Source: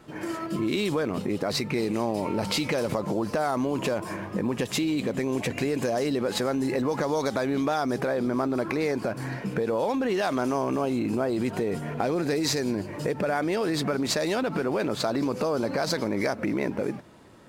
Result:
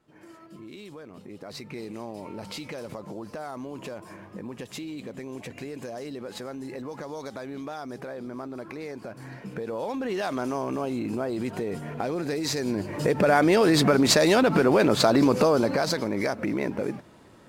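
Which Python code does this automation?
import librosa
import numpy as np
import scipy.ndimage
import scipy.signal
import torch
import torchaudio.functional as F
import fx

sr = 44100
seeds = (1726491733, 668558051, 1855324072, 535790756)

y = fx.gain(x, sr, db=fx.line((1.09, -17.0), (1.73, -10.5), (9.01, -10.5), (10.19, -3.0), (12.45, -3.0), (13.33, 7.0), (15.4, 7.0), (16.0, -0.5)))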